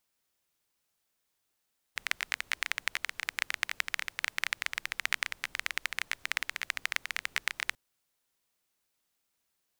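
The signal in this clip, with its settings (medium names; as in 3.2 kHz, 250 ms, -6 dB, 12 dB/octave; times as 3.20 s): rain from filtered ticks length 5.79 s, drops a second 16, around 2 kHz, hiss -25 dB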